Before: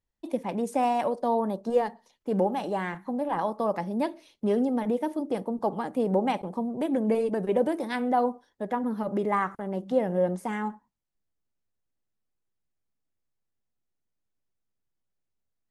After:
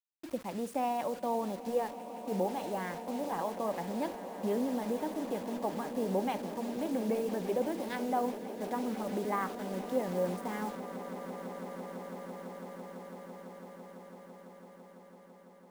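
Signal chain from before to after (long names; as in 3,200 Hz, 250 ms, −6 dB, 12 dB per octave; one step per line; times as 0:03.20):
bit reduction 7 bits
echo that builds up and dies away 167 ms, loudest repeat 8, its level −17.5 dB
level −7.5 dB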